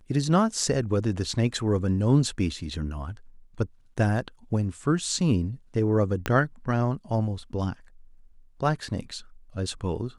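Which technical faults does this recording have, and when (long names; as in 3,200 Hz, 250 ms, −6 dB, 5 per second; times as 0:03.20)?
0:06.26: click −11 dBFS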